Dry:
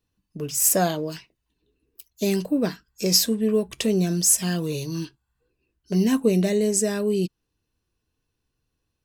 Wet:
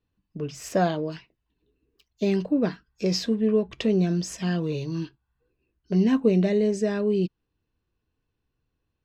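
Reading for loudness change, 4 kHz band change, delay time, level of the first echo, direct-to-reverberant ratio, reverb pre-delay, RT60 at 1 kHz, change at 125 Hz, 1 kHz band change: -3.0 dB, -8.5 dB, none, none, none, none, none, 0.0 dB, -1.0 dB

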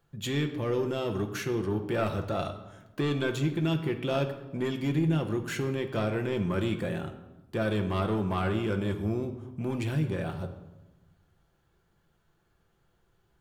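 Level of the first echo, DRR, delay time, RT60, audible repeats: none, 4.5 dB, none, 1.0 s, none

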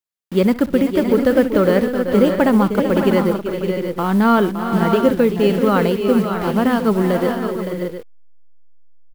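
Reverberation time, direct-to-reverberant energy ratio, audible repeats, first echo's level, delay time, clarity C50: none, none, 5, -18.5 dB, 64 ms, none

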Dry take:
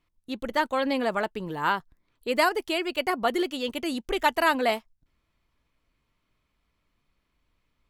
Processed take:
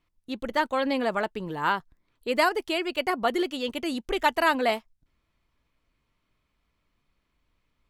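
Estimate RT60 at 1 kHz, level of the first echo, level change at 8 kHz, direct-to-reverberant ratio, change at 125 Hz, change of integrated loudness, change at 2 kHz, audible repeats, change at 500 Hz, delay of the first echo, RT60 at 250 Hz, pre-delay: none, none, -2.0 dB, none, 0.0 dB, 0.0 dB, 0.0 dB, none, 0.0 dB, none, none, none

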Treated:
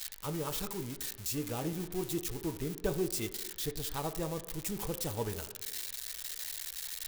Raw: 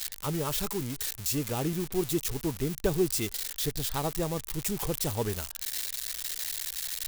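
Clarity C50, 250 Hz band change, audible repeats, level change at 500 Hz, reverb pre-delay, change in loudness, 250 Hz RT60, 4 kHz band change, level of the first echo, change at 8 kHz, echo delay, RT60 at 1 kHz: 13.0 dB, -5.5 dB, none, -5.5 dB, 3 ms, -6.0 dB, 1.5 s, -6.0 dB, none, -6.0 dB, none, 1.0 s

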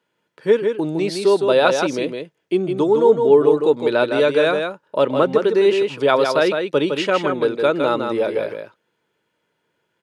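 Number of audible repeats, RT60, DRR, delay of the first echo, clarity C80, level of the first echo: 1, none, none, 0.16 s, none, -5.5 dB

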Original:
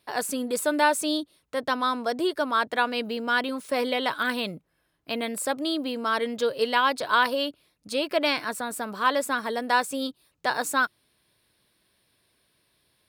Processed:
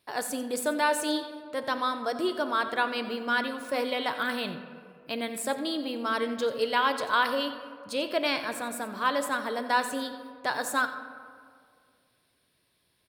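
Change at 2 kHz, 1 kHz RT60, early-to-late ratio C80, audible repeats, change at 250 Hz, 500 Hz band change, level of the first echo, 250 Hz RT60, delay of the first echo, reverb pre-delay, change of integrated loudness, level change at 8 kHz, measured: -3.0 dB, 2.0 s, 10.5 dB, 1, -3.0 dB, -2.5 dB, -15.0 dB, 2.3 s, 89 ms, 5 ms, -3.0 dB, -3.0 dB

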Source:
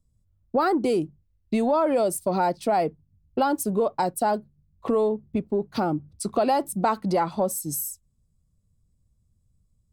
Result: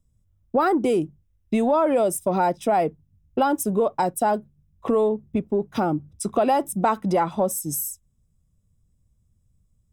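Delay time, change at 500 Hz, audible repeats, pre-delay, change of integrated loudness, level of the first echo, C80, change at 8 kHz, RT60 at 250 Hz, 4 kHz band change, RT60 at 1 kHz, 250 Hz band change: none, +2.0 dB, none, none, +2.0 dB, none, none, +2.0 dB, none, -1.0 dB, none, +2.0 dB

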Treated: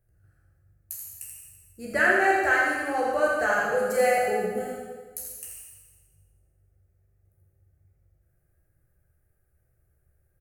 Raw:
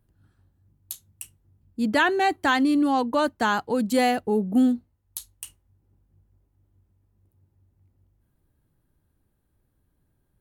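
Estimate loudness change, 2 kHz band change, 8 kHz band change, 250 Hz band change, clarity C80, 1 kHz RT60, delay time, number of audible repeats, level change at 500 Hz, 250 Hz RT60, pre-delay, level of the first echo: -1.5 dB, +4.0 dB, +1.5 dB, -13.5 dB, 0.5 dB, 1.4 s, 83 ms, 1, +2.0 dB, 1.3 s, 11 ms, -5.0 dB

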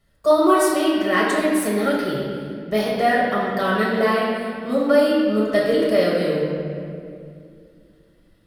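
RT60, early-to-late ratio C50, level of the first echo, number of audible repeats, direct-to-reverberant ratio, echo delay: 2.4 s, -1.0 dB, none, none, -6.0 dB, none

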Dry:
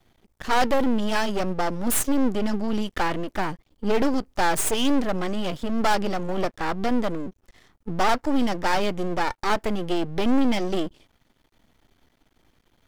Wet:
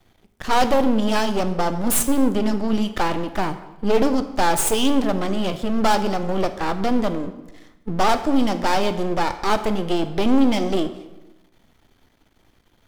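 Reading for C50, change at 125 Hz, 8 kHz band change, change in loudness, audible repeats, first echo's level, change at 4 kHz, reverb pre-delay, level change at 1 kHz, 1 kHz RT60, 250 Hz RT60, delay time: 12.0 dB, +4.0 dB, +4.0 dB, +3.5 dB, none, none, +3.5 dB, 9 ms, +3.5 dB, 1.0 s, 1.2 s, none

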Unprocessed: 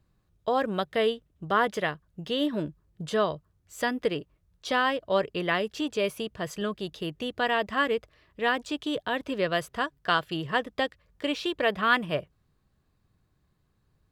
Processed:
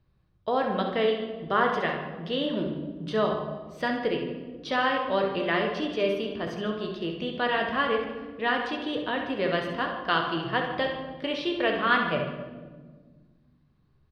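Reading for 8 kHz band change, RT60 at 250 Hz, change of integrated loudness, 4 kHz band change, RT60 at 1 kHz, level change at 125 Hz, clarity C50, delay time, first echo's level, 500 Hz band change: under -10 dB, 2.5 s, +0.5 dB, 0.0 dB, 1.2 s, +2.0 dB, 3.5 dB, 66 ms, -8.0 dB, +1.0 dB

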